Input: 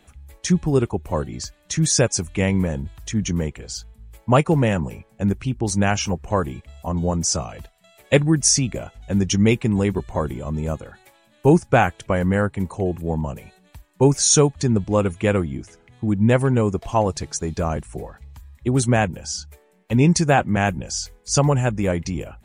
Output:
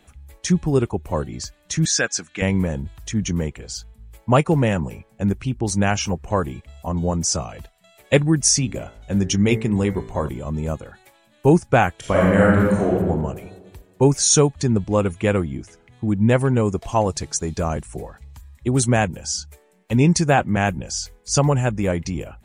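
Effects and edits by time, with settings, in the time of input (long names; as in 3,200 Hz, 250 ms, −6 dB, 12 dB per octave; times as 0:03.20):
0:01.85–0:02.42: loudspeaker in its box 320–7,500 Hz, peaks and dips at 390 Hz −8 dB, 580 Hz −7 dB, 940 Hz −9 dB, 1,600 Hz +9 dB, 3,800 Hz +3 dB
0:08.56–0:10.29: hum removal 55.39 Hz, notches 39
0:11.99–0:12.89: thrown reverb, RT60 1.5 s, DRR −5 dB
0:16.65–0:20.03: parametric band 7,800 Hz +4 dB 1.4 octaves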